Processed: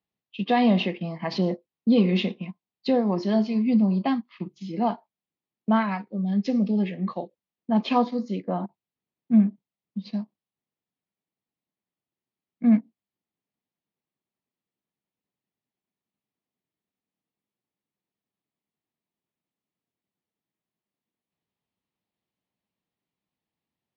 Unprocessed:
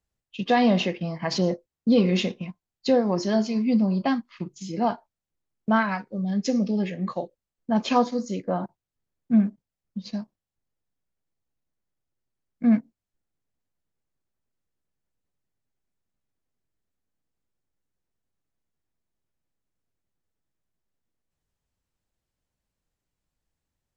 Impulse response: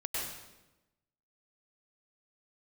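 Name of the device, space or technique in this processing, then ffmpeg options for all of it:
kitchen radio: -af "highpass=170,equalizer=f=200:t=q:w=4:g=4,equalizer=f=540:t=q:w=4:g=-4,equalizer=f=1.5k:t=q:w=4:g=-8,lowpass=f=4.1k:w=0.5412,lowpass=f=4.1k:w=1.3066"

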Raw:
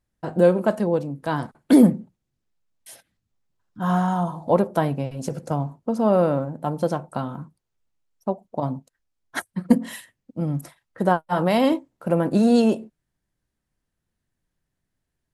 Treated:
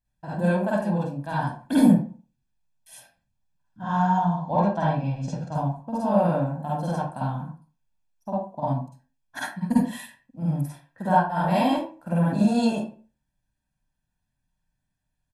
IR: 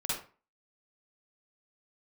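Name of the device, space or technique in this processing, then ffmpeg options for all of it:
microphone above a desk: -filter_complex "[0:a]aecho=1:1:1.2:0.69[a];[1:a]atrim=start_sample=2205[b];[a][b]afir=irnorm=-1:irlink=0,asettb=1/sr,asplit=3[c][d][e];[c]atrim=end=3.814[f];[d]atrim=start=3.81:end=5.55,asetpts=PTS-STARTPTS,afade=t=in:d=0.004:c=qsin,afade=t=out:st=1.736:d=0.004:c=qsin,lowpass=f=6.2k:w=0.5412,lowpass=f=6.2k:w=1.3066[g];[e]atrim=start=5.546[h];[f][g]acrossfade=d=0.004:c1=hsin:c2=qsin[i];[i][h]acrossfade=d=0.004:c1=qsin:c2=hsin,volume=-8dB"

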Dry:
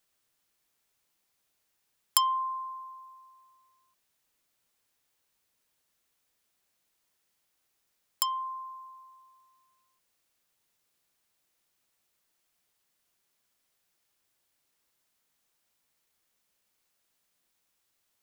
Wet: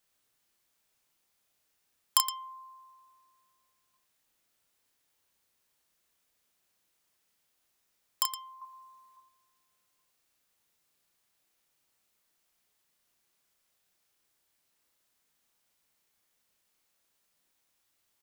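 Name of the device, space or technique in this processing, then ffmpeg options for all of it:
slapback doubling: -filter_complex "[0:a]asettb=1/sr,asplit=3[a][b][c];[a]atrim=end=8.614[d];[b]atrim=start=8.61:end=9.17,asetpts=PTS-STARTPTS,afade=t=in:d=0.004:c=qsin,afade=t=out:st=0.556:d=0.004:c=qsin,aecho=1:1:4.8:0.84,atrim=end_sample=24696[e];[c]atrim=start=9.166[f];[d][e]acrossfade=d=0.004:c1=hsin:c2=qsin[g];[g][f]acrossfade=d=0.004:c1=qsin:c2=hsin,asplit=3[h][i][j];[i]adelay=32,volume=-4dB[k];[j]adelay=117,volume=-11dB[l];[h][k][l]amix=inputs=3:normalize=0,volume=-1dB"

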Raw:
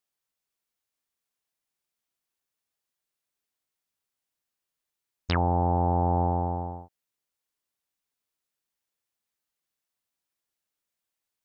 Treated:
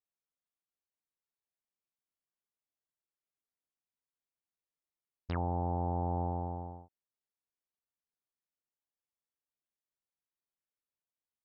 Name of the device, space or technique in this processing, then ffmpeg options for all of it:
through cloth: -af "highshelf=f=2.3k:g=-14.5,volume=-8.5dB"

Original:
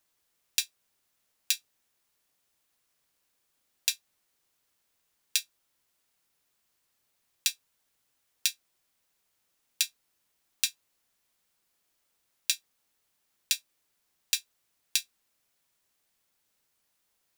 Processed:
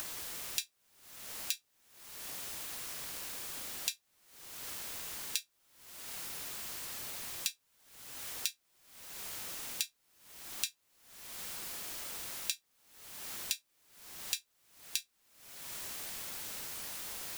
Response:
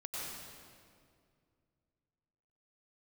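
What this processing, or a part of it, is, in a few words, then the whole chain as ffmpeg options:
upward and downward compression: -af "acompressor=mode=upward:threshold=-45dB:ratio=2.5,acompressor=threshold=-53dB:ratio=5,volume=17.5dB"

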